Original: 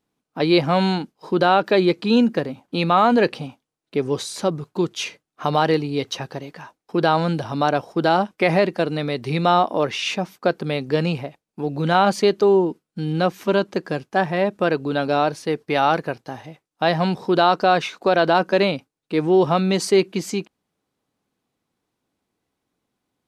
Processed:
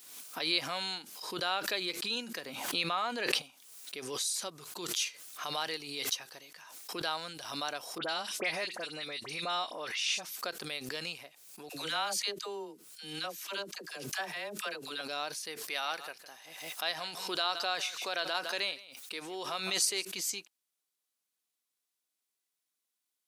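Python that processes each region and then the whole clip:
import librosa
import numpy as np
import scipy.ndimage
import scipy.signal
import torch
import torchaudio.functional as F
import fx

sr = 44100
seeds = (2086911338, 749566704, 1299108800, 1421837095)

y = fx.chain(x, sr, fx.high_shelf(hz=4300.0, db=-6.5),
    fx.env_flatten(amount_pct=70), at=(2.46, 3.42))
y = fx.chain(y, sr, fx.lowpass(hz=9600.0, slope=12),
    fx.dispersion(late='highs', ms=57.0, hz=2500.0), at=(7.98, 10.23))
y = fx.chain(y, sr, fx.low_shelf(hz=190.0, db=-5.5),
    fx.dispersion(late='lows', ms=65.0, hz=610.0), at=(11.69, 15.01))
y = fx.chain(y, sr, fx.highpass(hz=270.0, slope=6),
    fx.echo_single(ms=160, db=-18.5), at=(15.68, 20.05))
y = np.diff(y, prepend=0.0)
y = fx.notch(y, sr, hz=850.0, q=15.0)
y = fx.pre_swell(y, sr, db_per_s=51.0)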